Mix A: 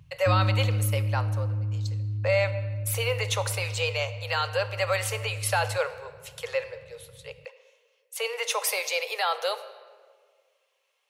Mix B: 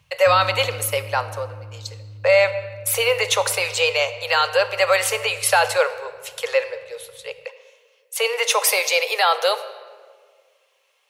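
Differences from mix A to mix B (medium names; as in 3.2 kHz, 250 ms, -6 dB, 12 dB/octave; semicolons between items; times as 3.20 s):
speech +9.0 dB; background -9.0 dB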